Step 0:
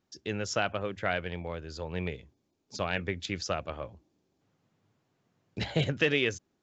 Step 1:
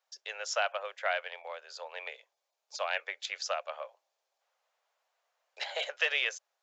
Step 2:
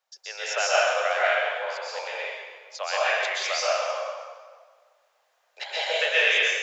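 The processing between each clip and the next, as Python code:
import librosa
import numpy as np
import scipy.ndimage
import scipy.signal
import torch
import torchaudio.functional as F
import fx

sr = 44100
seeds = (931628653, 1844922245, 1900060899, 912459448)

y1 = scipy.signal.sosfilt(scipy.signal.butter(8, 550.0, 'highpass', fs=sr, output='sos'), x)
y2 = fx.rev_plate(y1, sr, seeds[0], rt60_s=1.6, hf_ratio=0.8, predelay_ms=110, drr_db=-8.5)
y2 = y2 * 10.0 ** (1.5 / 20.0)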